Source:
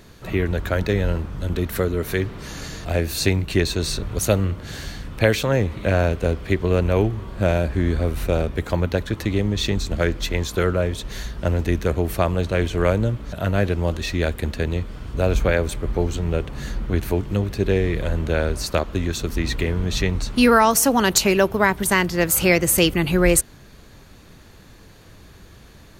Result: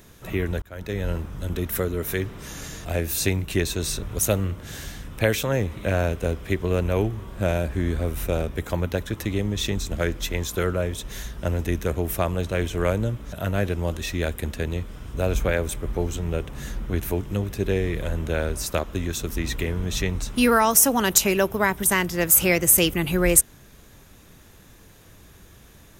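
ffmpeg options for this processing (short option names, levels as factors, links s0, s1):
-filter_complex "[0:a]asplit=2[s0][s1];[s0]atrim=end=0.62,asetpts=PTS-STARTPTS,afade=t=out:st=0.616:d=0.004:c=hsin[s2];[s1]atrim=start=0.62,asetpts=PTS-STARTPTS,afade=t=in:d=0.51[s3];[s2][s3]concat=n=2:v=0:a=1,highshelf=f=7400:g=11,bandreject=f=4400:w=6.9,volume=0.631"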